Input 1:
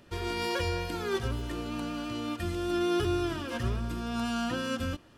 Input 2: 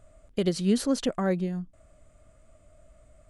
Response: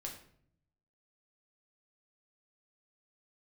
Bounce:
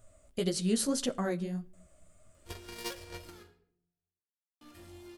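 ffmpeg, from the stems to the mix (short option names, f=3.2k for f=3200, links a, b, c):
-filter_complex "[0:a]asoftclip=type=tanh:threshold=-35.5dB,adelay=2350,volume=1dB,asplit=3[a][b][c];[a]atrim=end=3.43,asetpts=PTS-STARTPTS,afade=t=out:st=3.426:d=0.004:c=hsin[d];[b]atrim=start=3.43:end=4.61,asetpts=PTS-STARTPTS,volume=0[e];[c]atrim=start=4.61,asetpts=PTS-STARTPTS,afade=t=in:d=0.004:c=hsin[f];[d][e][f]concat=n=3:v=0:a=1,asplit=2[g][h];[h]volume=-15.5dB[i];[1:a]flanger=delay=7.6:depth=8.6:regen=12:speed=1.8:shape=triangular,volume=-3.5dB,asplit=3[j][k][l];[k]volume=-11.5dB[m];[l]apad=whole_len=332064[n];[g][n]sidechaingate=range=-33dB:threshold=-58dB:ratio=16:detection=peak[o];[2:a]atrim=start_sample=2205[p];[i][m]amix=inputs=2:normalize=0[q];[q][p]afir=irnorm=-1:irlink=0[r];[o][j][r]amix=inputs=3:normalize=0,crystalizer=i=2:c=0"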